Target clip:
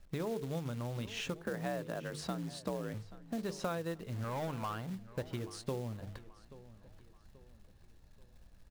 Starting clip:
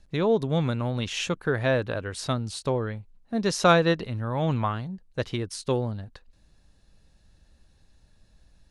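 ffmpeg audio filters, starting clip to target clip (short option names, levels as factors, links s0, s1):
-filter_complex "[0:a]highshelf=f=2300:g=-10,bandreject=f=50:t=h:w=6,bandreject=f=100:t=h:w=6,bandreject=f=150:t=h:w=6,bandreject=f=200:t=h:w=6,bandreject=f=250:t=h:w=6,bandreject=f=300:t=h:w=6,bandreject=f=350:t=h:w=6,bandreject=f=400:t=h:w=6,bandreject=f=450:t=h:w=6,acompressor=threshold=0.0178:ratio=5,asplit=3[s0][s1][s2];[s0]afade=t=out:st=1.43:d=0.02[s3];[s1]afreqshift=52,afade=t=in:st=1.43:d=0.02,afade=t=out:st=2.93:d=0.02[s4];[s2]afade=t=in:st=2.93:d=0.02[s5];[s3][s4][s5]amix=inputs=3:normalize=0,asettb=1/sr,asplit=3[s6][s7][s8];[s6]atrim=end=4.244[s9];[s7]atrim=start=4.24:end=4.9,asetpts=PTS-STARTPTS,afade=t=in:d=0.004:c=qsin,afade=t=out:st=0.656:d=0.004:c=qsin,asplit=2[s10][s11];[s11]highpass=f=720:p=1,volume=5.62,asoftclip=type=tanh:threshold=0.0299[s12];[s10][s12]amix=inputs=2:normalize=0,lowpass=f=5800:p=1,volume=0.501[s13];[s8]atrim=start=4.896[s14];[s9][s13]acrossfade=d=0.004:c1=hsin:c2=qsin[s15];[s15][s14]acrossfade=d=0.004:c1=qsin:c2=hsin,acrusher=bits=4:mode=log:mix=0:aa=0.000001,asplit=2[s16][s17];[s17]adelay=832,lowpass=f=4900:p=1,volume=0.133,asplit=2[s18][s19];[s19]adelay=832,lowpass=f=4900:p=1,volume=0.41,asplit=2[s20][s21];[s21]adelay=832,lowpass=f=4900:p=1,volume=0.41[s22];[s16][s18][s20][s22]amix=inputs=4:normalize=0,volume=0.891"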